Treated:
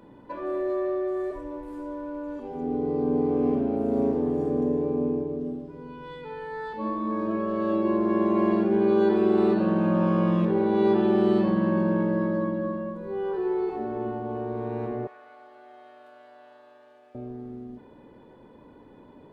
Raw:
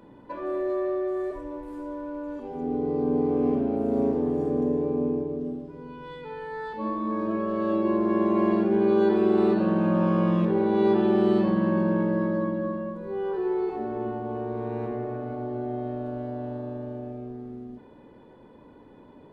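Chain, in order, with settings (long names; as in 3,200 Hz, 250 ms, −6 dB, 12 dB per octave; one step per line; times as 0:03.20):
0:15.07–0:17.15: high-pass filter 1,400 Hz 12 dB per octave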